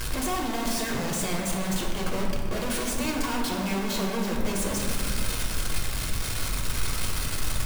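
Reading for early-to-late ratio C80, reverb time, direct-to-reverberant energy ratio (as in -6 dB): 4.0 dB, 2.2 s, -1.5 dB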